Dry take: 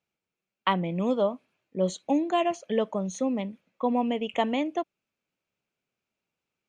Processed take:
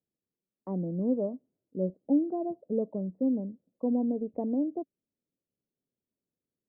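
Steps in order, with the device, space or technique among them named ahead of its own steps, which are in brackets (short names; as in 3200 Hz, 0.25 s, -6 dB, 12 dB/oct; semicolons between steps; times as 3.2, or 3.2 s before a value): under water (LPF 540 Hz 24 dB/oct; bell 270 Hz +5 dB 0.39 oct); gain -3 dB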